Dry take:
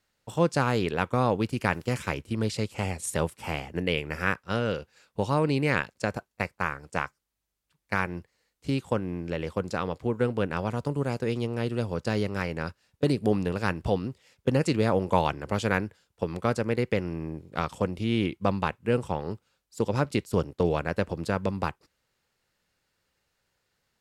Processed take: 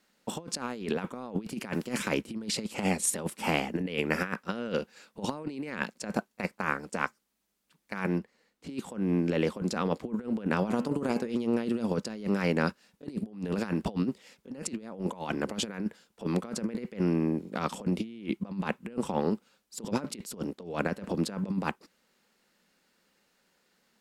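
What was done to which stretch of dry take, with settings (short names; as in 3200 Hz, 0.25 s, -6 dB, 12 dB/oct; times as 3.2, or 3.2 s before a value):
8.18–8.7 high shelf 4300 Hz -9 dB
10.58–11.35 de-hum 82.59 Hz, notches 39
whole clip: resonant low shelf 150 Hz -10.5 dB, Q 3; negative-ratio compressor -30 dBFS, ratio -0.5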